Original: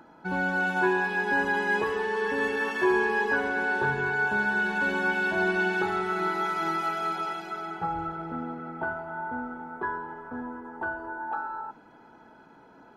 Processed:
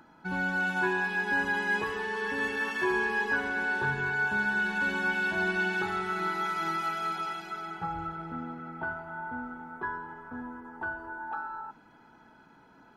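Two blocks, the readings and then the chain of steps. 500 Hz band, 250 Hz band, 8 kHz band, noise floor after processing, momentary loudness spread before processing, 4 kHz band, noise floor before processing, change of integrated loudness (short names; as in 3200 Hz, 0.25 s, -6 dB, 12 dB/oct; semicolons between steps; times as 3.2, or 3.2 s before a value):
-7.0 dB, -4.0 dB, n/a, -58 dBFS, 11 LU, -0.5 dB, -54 dBFS, -2.5 dB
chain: bell 510 Hz -8 dB 1.8 oct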